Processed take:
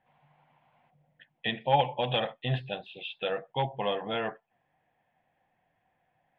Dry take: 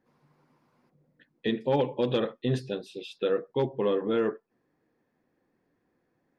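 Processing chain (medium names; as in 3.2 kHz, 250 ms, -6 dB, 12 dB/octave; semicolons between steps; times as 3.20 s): FFT filter 150 Hz 0 dB, 270 Hz -12 dB, 420 Hz -13 dB, 730 Hz +12 dB, 1.2 kHz -3 dB, 1.9 kHz +5 dB, 3.2 kHz +9 dB, 5.6 kHz -29 dB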